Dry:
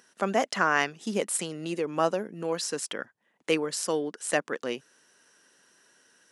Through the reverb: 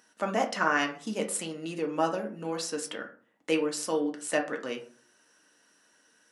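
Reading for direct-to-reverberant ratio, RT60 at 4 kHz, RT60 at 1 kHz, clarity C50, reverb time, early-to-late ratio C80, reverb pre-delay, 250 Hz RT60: 1.5 dB, 0.25 s, 0.45 s, 11.5 dB, 0.45 s, 16.0 dB, 3 ms, 0.50 s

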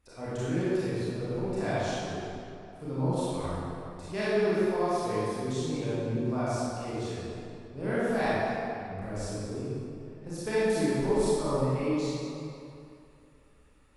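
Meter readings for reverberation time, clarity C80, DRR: 2.7 s, −3.5 dB, −11.5 dB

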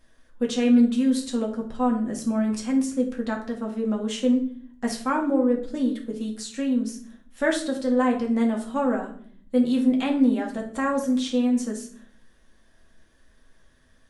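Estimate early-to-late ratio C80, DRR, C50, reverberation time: 13.5 dB, −1.0 dB, 9.5 dB, 0.55 s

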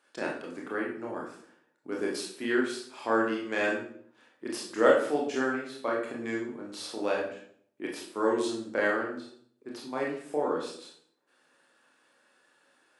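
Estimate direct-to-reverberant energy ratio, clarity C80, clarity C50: −3.0 dB, 8.5 dB, 4.5 dB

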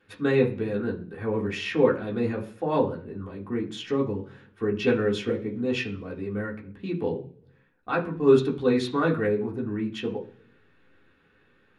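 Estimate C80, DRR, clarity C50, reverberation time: 17.0 dB, −4.0 dB, 12.5 dB, 0.50 s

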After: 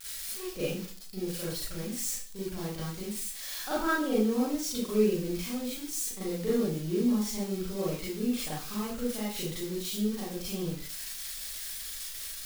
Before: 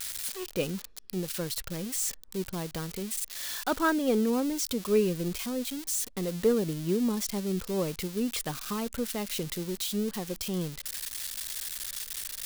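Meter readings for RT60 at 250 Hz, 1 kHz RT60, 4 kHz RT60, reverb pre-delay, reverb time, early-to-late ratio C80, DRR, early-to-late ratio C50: 0.40 s, 0.40 s, 0.40 s, 33 ms, 0.45 s, 6.0 dB, −9.0 dB, −0.5 dB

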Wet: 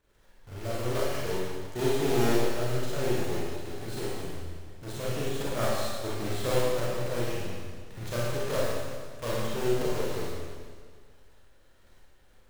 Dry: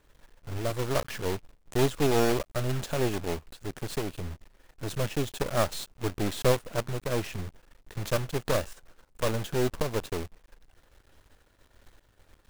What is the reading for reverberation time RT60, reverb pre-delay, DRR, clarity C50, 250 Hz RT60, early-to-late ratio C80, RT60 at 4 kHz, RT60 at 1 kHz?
1.8 s, 32 ms, −7.5 dB, −4.0 dB, 1.8 s, −1.0 dB, 1.7 s, 1.8 s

